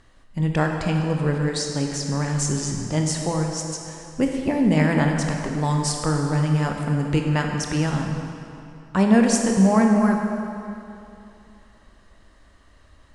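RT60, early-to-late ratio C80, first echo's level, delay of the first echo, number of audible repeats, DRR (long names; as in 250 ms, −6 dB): 2.8 s, 4.0 dB, no echo audible, no echo audible, no echo audible, 2.0 dB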